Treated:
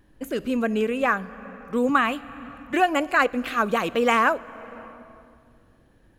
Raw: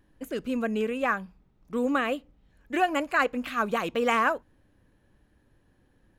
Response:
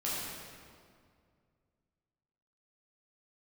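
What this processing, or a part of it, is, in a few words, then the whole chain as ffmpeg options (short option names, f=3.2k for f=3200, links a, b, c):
ducked reverb: -filter_complex "[0:a]asplit=3[a][b][c];[1:a]atrim=start_sample=2205[d];[b][d]afir=irnorm=-1:irlink=0[e];[c]apad=whole_len=272694[f];[e][f]sidechaincompress=threshold=-35dB:ratio=8:attack=38:release=476,volume=-13dB[g];[a][g]amix=inputs=2:normalize=0,asettb=1/sr,asplit=3[h][i][j];[h]atrim=end=1.894[k];[i]atrim=start=1.89:end=2.74,asetpts=PTS-STARTPTS,afade=t=in:d=0.004:c=qsin,afade=t=out:st=0.846:d=0.004:c=qsin,equalizer=f=125:t=o:w=1:g=11,equalizer=f=500:t=o:w=1:g=-12,equalizer=f=1k:t=o:w=1:g=8[l];[j]atrim=start=2.736[m];[k][l]acrossfade=d=0.004:c1=hsin:c2=qsin[n];[n][m]acrossfade=d=0.004:c1=qsin:c2=hsin,volume=4dB"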